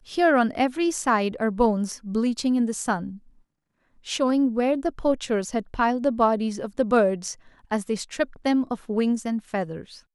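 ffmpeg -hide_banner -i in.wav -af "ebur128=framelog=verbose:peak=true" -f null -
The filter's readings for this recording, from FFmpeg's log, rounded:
Integrated loudness:
  I:         -24.2 LUFS
  Threshold: -34.5 LUFS
Loudness range:
  LRA:         2.6 LU
  Threshold: -44.9 LUFS
  LRA low:   -26.0 LUFS
  LRA high:  -23.3 LUFS
True peak:
  Peak:       -8.1 dBFS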